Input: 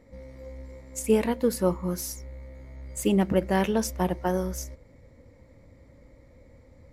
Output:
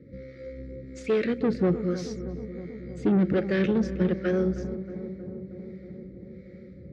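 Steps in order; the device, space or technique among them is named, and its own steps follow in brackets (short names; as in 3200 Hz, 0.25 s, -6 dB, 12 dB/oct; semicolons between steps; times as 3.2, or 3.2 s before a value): elliptic band-stop 570–1300 Hz; guitar amplifier with harmonic tremolo (harmonic tremolo 1.3 Hz, depth 70%, crossover 480 Hz; soft clip -28.5 dBFS, distortion -8 dB; speaker cabinet 89–4200 Hz, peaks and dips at 150 Hz +9 dB, 360 Hz +7 dB, 590 Hz -3 dB, 970 Hz -9 dB, 2900 Hz -6 dB); darkening echo 0.316 s, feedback 80%, low-pass 1100 Hz, level -11.5 dB; gain +8 dB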